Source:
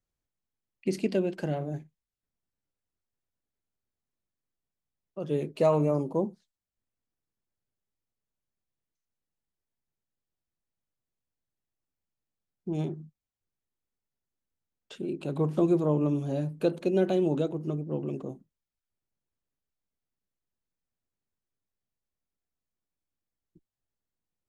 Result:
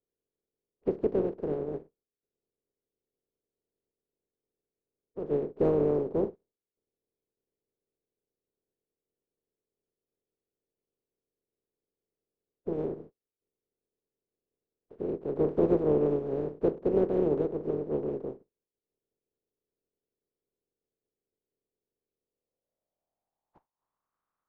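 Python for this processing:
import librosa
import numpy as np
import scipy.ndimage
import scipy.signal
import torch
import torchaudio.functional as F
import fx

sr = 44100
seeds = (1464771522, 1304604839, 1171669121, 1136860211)

y = fx.spec_flatten(x, sr, power=0.19)
y = fx.filter_sweep_lowpass(y, sr, from_hz=430.0, to_hz=1200.0, start_s=22.2, end_s=24.17, q=4.3)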